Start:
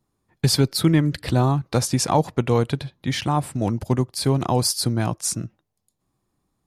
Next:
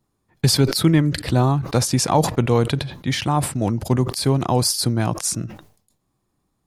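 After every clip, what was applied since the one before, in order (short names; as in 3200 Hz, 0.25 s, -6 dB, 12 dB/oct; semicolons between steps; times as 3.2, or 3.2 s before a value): sustainer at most 110 dB/s; gain +1.5 dB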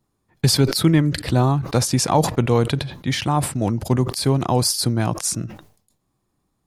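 nothing audible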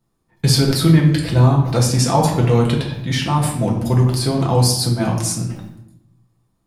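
reverb RT60 0.85 s, pre-delay 4 ms, DRR -2 dB; gain -2.5 dB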